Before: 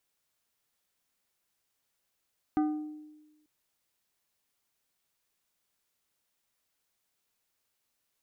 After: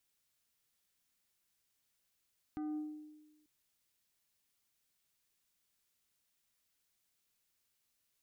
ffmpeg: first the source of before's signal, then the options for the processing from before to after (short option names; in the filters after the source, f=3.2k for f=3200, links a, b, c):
-f lavfi -i "aevalsrc='0.075*pow(10,-3*t/1.17)*sin(2*PI*304*t)+0.0299*pow(10,-3*t/0.616)*sin(2*PI*760*t)+0.0119*pow(10,-3*t/0.443)*sin(2*PI*1216*t)+0.00473*pow(10,-3*t/0.379)*sin(2*PI*1520*t)+0.00188*pow(10,-3*t/0.316)*sin(2*PI*1976*t)':d=0.89:s=44100"
-af "equalizer=f=720:w=0.54:g=-6.5,alimiter=level_in=11dB:limit=-24dB:level=0:latency=1:release=35,volume=-11dB"